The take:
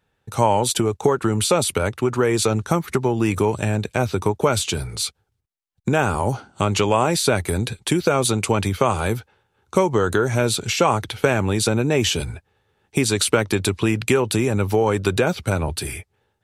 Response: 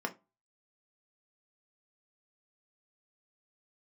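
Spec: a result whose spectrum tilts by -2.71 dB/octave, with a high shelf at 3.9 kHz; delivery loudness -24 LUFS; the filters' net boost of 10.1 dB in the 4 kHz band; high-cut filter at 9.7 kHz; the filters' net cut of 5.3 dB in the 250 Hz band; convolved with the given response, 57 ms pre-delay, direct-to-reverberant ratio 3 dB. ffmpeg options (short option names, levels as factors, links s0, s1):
-filter_complex "[0:a]lowpass=9700,equalizer=f=250:t=o:g=-8,highshelf=f=3900:g=7,equalizer=f=4000:t=o:g=8,asplit=2[s0][s1];[1:a]atrim=start_sample=2205,adelay=57[s2];[s1][s2]afir=irnorm=-1:irlink=0,volume=0.422[s3];[s0][s3]amix=inputs=2:normalize=0,volume=0.473"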